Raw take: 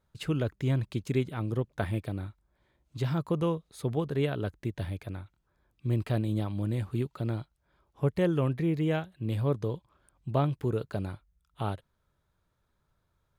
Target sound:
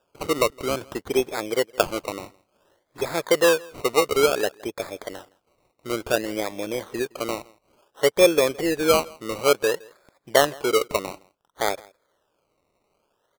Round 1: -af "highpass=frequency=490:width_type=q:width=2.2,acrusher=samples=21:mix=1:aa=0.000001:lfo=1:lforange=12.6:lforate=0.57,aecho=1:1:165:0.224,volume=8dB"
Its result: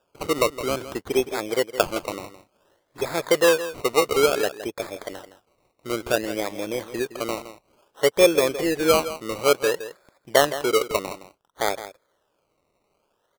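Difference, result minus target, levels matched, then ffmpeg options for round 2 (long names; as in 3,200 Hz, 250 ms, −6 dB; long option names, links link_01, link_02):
echo-to-direct +11.5 dB
-af "highpass=frequency=490:width_type=q:width=2.2,acrusher=samples=21:mix=1:aa=0.000001:lfo=1:lforange=12.6:lforate=0.57,aecho=1:1:165:0.0596,volume=8dB"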